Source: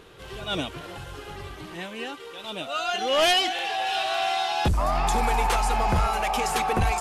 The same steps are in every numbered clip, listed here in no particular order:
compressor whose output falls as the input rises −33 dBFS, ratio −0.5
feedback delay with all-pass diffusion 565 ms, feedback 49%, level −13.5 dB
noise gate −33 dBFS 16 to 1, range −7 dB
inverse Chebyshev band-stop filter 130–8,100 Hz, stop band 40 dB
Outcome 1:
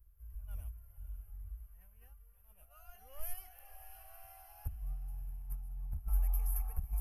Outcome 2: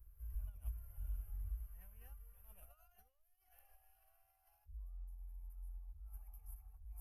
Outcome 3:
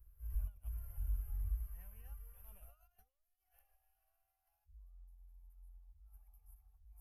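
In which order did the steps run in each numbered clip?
noise gate, then inverse Chebyshev band-stop filter, then compressor whose output falls as the input rises, then feedback delay with all-pass diffusion
noise gate, then feedback delay with all-pass diffusion, then compressor whose output falls as the input rises, then inverse Chebyshev band-stop filter
feedback delay with all-pass diffusion, then compressor whose output falls as the input rises, then noise gate, then inverse Chebyshev band-stop filter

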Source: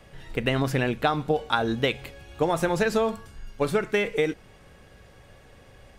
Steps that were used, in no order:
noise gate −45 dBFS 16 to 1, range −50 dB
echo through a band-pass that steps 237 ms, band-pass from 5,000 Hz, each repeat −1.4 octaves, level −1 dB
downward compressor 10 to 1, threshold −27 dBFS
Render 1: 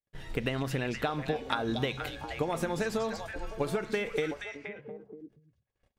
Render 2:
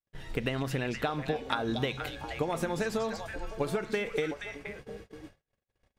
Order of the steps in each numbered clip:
downward compressor, then noise gate, then echo through a band-pass that steps
downward compressor, then echo through a band-pass that steps, then noise gate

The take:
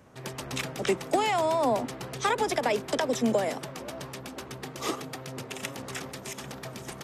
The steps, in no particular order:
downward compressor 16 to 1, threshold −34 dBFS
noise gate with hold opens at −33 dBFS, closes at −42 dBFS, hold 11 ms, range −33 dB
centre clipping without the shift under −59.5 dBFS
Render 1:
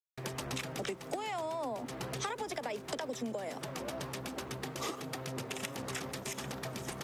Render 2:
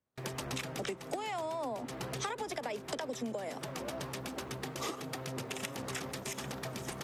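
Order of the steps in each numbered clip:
noise gate with hold, then downward compressor, then centre clipping without the shift
centre clipping without the shift, then noise gate with hold, then downward compressor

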